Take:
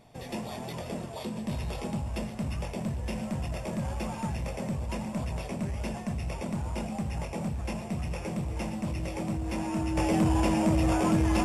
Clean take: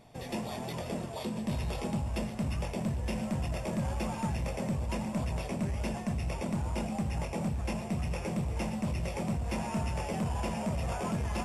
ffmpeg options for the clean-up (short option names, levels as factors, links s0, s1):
-af "bandreject=f=320:w=30,asetnsamples=n=441:p=0,asendcmd='9.97 volume volume -6.5dB',volume=1"